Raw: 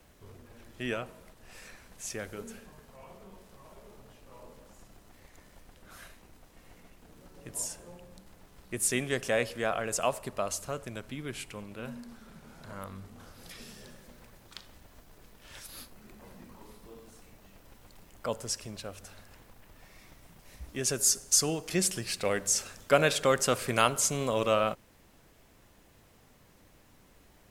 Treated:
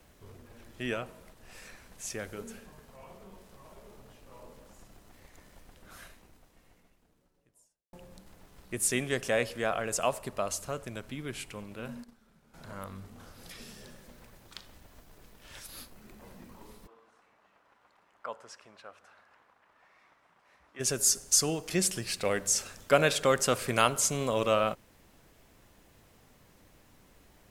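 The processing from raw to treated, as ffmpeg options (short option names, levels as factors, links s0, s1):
-filter_complex "[0:a]asettb=1/sr,asplit=3[s0][s1][s2];[s0]atrim=end=11.884[s3];[s1]atrim=start=11.88:end=12.54,asetpts=PTS-STARTPTS,afade=t=in:d=0.004:c=qsin,afade=t=out:st=0.656:d=0.004:c=qsin,agate=range=0.224:threshold=0.00501:ratio=16:release=100:detection=peak[s4];[s2]atrim=start=12.536[s5];[s3][s4]acrossfade=d=0.004:c1=hsin:c2=qsin[s6];[s6][s5]acrossfade=d=0.004:c1=qsin:c2=hsin,asplit=3[s7][s8][s9];[s7]afade=t=out:st=16.86:d=0.02[s10];[s8]bandpass=f=1200:t=q:w=1.4,afade=t=in:st=16.86:d=0.02,afade=t=out:st=20.79:d=0.02[s11];[s9]afade=t=in:st=20.79:d=0.02[s12];[s10][s11][s12]amix=inputs=3:normalize=0,asplit=2[s13][s14];[s13]atrim=end=7.93,asetpts=PTS-STARTPTS,afade=t=out:st=5.99:d=1.94:c=qua[s15];[s14]atrim=start=7.93,asetpts=PTS-STARTPTS,afade=t=in:d=0.004:c=hsin[s16];[s15][s16]concat=n=2:v=0:a=1"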